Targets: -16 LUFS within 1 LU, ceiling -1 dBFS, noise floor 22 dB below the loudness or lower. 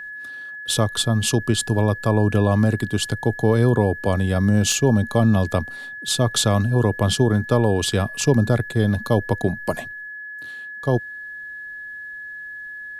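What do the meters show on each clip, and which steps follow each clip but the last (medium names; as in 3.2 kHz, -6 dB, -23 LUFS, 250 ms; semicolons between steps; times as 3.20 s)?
dropouts 1; longest dropout 1.1 ms; steady tone 1.7 kHz; tone level -32 dBFS; loudness -20.0 LUFS; peak level -4.5 dBFS; loudness target -16.0 LUFS
-> interpolate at 4.72 s, 1.1 ms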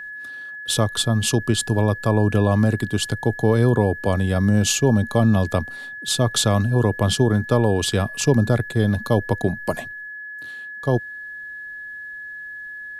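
dropouts 0; steady tone 1.7 kHz; tone level -32 dBFS
-> band-stop 1.7 kHz, Q 30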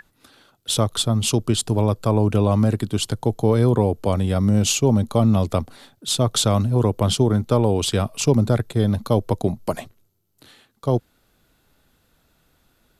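steady tone not found; loudness -20.5 LUFS; peak level -4.5 dBFS; loudness target -16.0 LUFS
-> trim +4.5 dB; peak limiter -1 dBFS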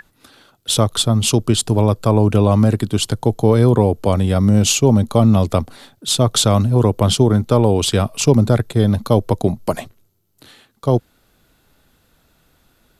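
loudness -16.0 LUFS; peak level -1.0 dBFS; noise floor -60 dBFS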